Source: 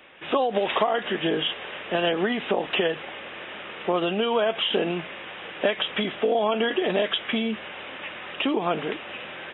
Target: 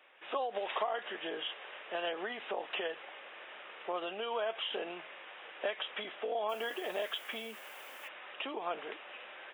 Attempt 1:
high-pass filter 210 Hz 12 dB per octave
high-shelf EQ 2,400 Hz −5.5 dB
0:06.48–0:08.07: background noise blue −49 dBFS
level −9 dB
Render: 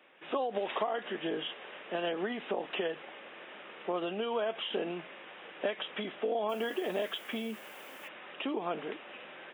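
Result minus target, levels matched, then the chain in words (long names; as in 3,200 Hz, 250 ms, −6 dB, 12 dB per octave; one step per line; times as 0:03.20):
250 Hz band +7.0 dB
high-pass filter 560 Hz 12 dB per octave
high-shelf EQ 2,400 Hz −5.5 dB
0:06.48–0:08.07: background noise blue −49 dBFS
level −9 dB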